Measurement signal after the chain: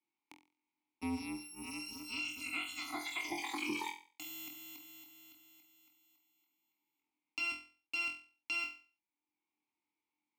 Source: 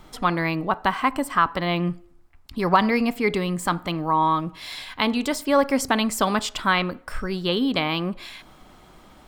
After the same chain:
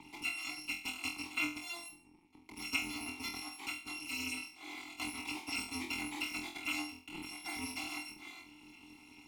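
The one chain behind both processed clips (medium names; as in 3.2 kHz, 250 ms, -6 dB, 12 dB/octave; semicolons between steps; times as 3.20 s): bit-reversed sample order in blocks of 256 samples; vowel filter u; on a send: flutter echo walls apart 4 m, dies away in 0.35 s; on the sum: three bands compressed up and down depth 40%; trim +6.5 dB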